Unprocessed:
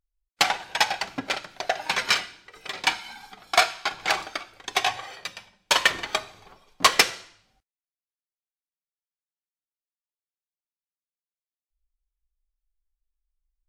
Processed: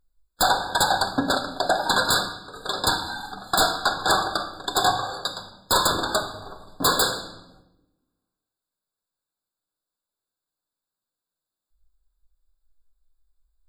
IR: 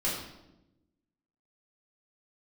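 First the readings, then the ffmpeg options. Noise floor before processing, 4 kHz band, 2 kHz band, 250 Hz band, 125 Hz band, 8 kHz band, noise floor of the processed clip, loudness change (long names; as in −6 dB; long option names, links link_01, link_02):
below −85 dBFS, +1.0 dB, −1.5 dB, +10.0 dB, +12.0 dB, +3.0 dB, below −85 dBFS, +1.0 dB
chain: -filter_complex "[0:a]aeval=exprs='0.501*sin(PI/2*3.98*val(0)/0.501)':channel_layout=same,asplit=2[link_01][link_02];[1:a]atrim=start_sample=2205,asetrate=41454,aresample=44100[link_03];[link_02][link_03]afir=irnorm=-1:irlink=0,volume=-13dB[link_04];[link_01][link_04]amix=inputs=2:normalize=0,afftfilt=real='re*eq(mod(floor(b*sr/1024/1700),2),0)':imag='im*eq(mod(floor(b*sr/1024/1700),2),0)':win_size=1024:overlap=0.75,volume=-7.5dB"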